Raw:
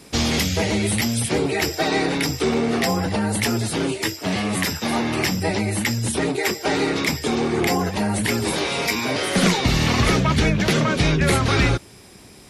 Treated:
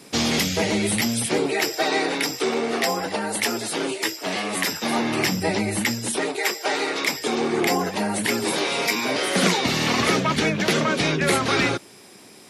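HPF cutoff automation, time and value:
1.1 s 150 Hz
1.71 s 340 Hz
4.49 s 340 Hz
5.2 s 140 Hz
5.82 s 140 Hz
6.36 s 490 Hz
6.92 s 490 Hz
7.5 s 220 Hz

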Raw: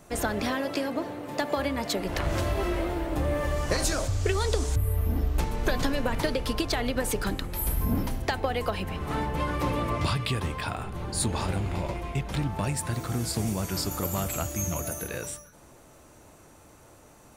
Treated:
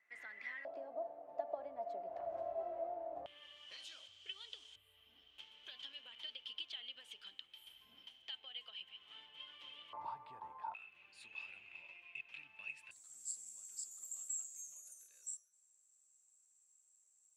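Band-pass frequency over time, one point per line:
band-pass, Q 19
2000 Hz
from 0.65 s 680 Hz
from 3.26 s 3100 Hz
from 9.93 s 900 Hz
from 10.74 s 2600 Hz
from 12.91 s 7600 Hz

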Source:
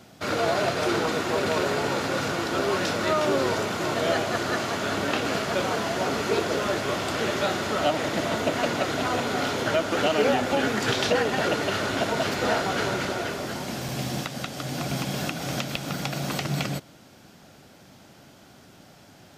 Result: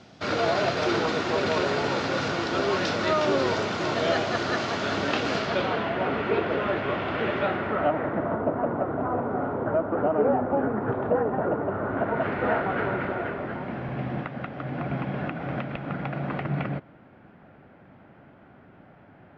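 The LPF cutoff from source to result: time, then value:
LPF 24 dB/oct
5.36 s 5700 Hz
5.93 s 2800 Hz
7.37 s 2800 Hz
8.5 s 1200 Hz
11.74 s 1200 Hz
12.32 s 2100 Hz

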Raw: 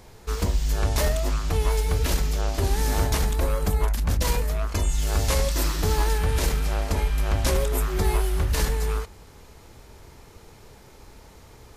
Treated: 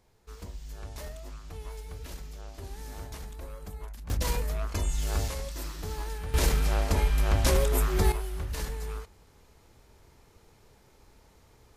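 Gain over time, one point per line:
-18 dB
from 4.1 s -5.5 dB
from 5.28 s -13 dB
from 6.34 s -1 dB
from 8.12 s -10.5 dB

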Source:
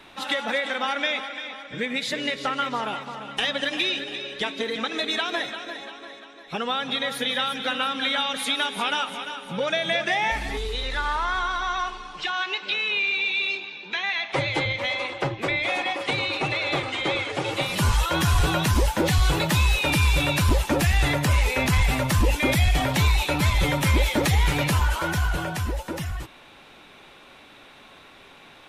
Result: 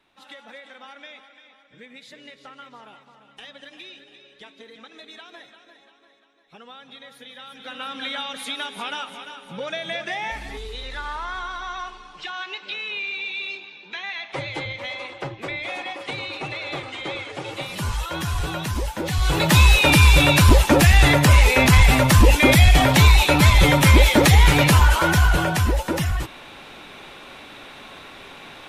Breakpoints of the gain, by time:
7.38 s -17 dB
7.94 s -5 dB
19.05 s -5 dB
19.57 s +7.5 dB

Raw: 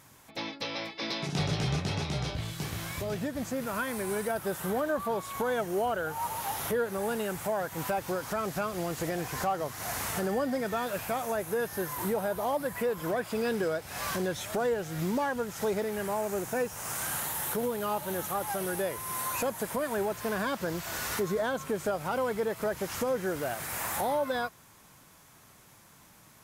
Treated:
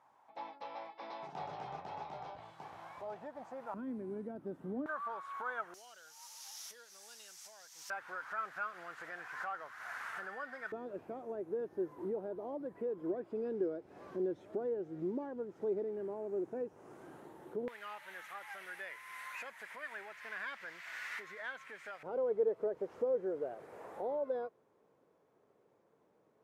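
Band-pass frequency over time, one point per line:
band-pass, Q 3.6
840 Hz
from 3.74 s 270 Hz
from 4.86 s 1300 Hz
from 5.74 s 5600 Hz
from 7.9 s 1500 Hz
from 10.72 s 350 Hz
from 17.68 s 2000 Hz
from 22.03 s 450 Hz

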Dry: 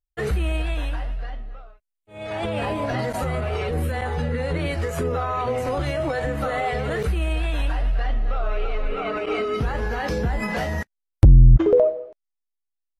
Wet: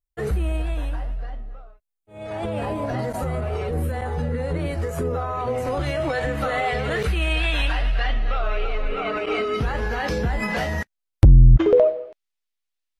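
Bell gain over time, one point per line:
bell 3000 Hz 2.3 oct
5.33 s -7 dB
6.11 s +4 dB
6.8 s +4 dB
7.41 s +10.5 dB
8.25 s +10.5 dB
8.73 s +3 dB
11.33 s +3 dB
11.86 s +9.5 dB

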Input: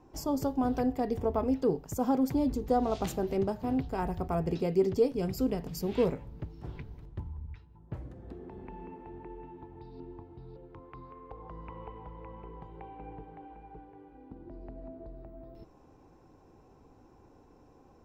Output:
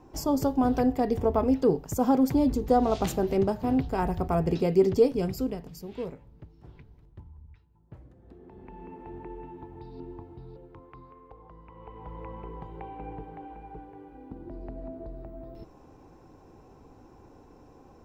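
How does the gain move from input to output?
5.14 s +5 dB
5.87 s -8 dB
8.19 s -8 dB
9.1 s +4 dB
10.29 s +4 dB
11.68 s -6.5 dB
12.14 s +5.5 dB

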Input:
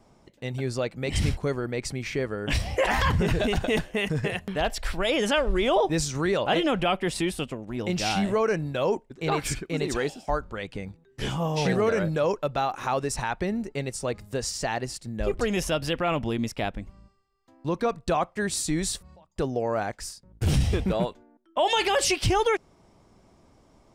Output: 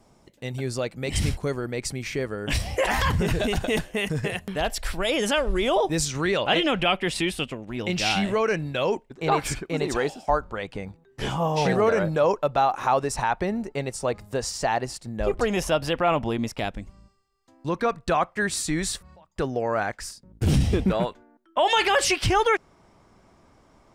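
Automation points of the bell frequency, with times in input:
bell +6.5 dB 1.5 oct
12000 Hz
from 6.05 s 2700 Hz
from 9.11 s 850 Hz
from 16.59 s 7400 Hz
from 17.7 s 1600 Hz
from 20.11 s 250 Hz
from 20.9 s 1500 Hz

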